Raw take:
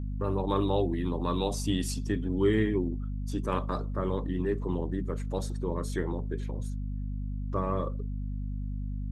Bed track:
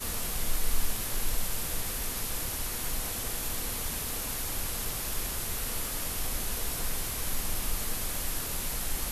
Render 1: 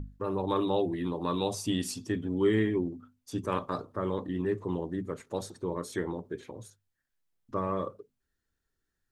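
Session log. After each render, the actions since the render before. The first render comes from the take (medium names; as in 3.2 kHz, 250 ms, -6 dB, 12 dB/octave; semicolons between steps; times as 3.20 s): hum notches 50/100/150/200/250 Hz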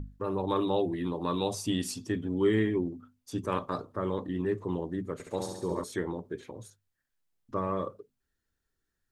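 5.13–5.84 s: flutter echo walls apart 11.7 m, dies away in 0.93 s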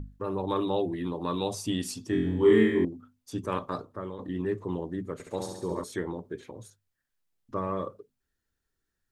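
2.10–2.85 s: flutter echo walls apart 3.9 m, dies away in 0.75 s; 3.75–4.19 s: fade out, to -10 dB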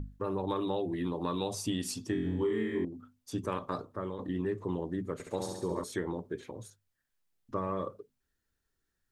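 compression 8:1, threshold -28 dBFS, peak gain reduction 13 dB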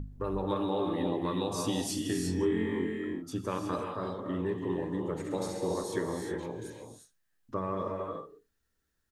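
delay 79 ms -22.5 dB; gated-style reverb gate 390 ms rising, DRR 1.5 dB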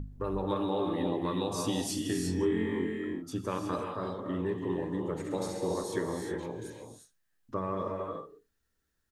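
no audible change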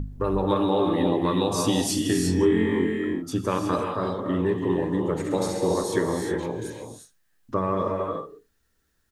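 trim +8.5 dB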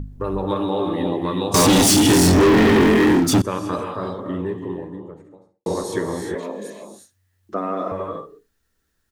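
1.54–3.42 s: waveshaping leveller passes 5; 3.96–5.66 s: studio fade out; 6.35–7.92 s: frequency shift +92 Hz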